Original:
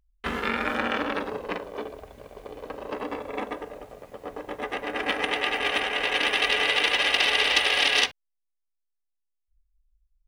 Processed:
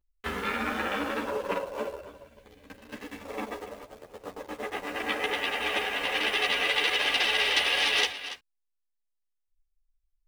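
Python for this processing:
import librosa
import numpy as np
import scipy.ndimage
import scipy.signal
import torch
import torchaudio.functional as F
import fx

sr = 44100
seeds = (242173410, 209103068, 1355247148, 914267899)

p1 = fx.spec_box(x, sr, start_s=2.0, length_s=1.22, low_hz=320.0, high_hz=1500.0, gain_db=-11)
p2 = fx.quant_dither(p1, sr, seeds[0], bits=6, dither='none')
p3 = p1 + (p2 * 10.0 ** (-4.0 / 20.0))
p4 = fx.small_body(p3, sr, hz=(570.0, 980.0, 1400.0, 2700.0), ring_ms=45, db=12, at=(1.24, 2.44))
p5 = p4 + fx.echo_single(p4, sr, ms=282, db=-13.0, dry=0)
p6 = fx.ensemble(p5, sr)
y = p6 * 10.0 ** (-4.5 / 20.0)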